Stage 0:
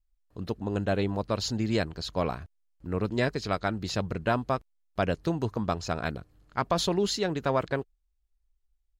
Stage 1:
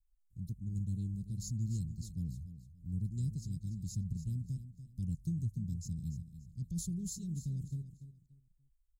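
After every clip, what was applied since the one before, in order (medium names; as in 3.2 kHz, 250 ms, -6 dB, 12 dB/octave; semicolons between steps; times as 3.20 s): elliptic band-stop 160–7600 Hz, stop band 70 dB; on a send: feedback delay 290 ms, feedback 27%, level -12 dB; on the sum: trim -1.5 dB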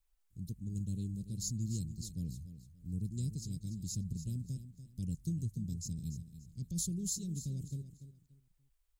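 tone controls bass -11 dB, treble -2 dB; trim +8.5 dB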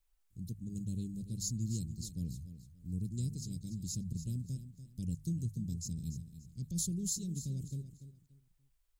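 hum notches 50/100/150 Hz; trim +1 dB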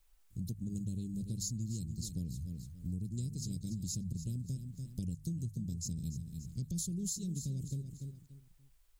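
compression, threshold -44 dBFS, peak gain reduction 12 dB; trim +8.5 dB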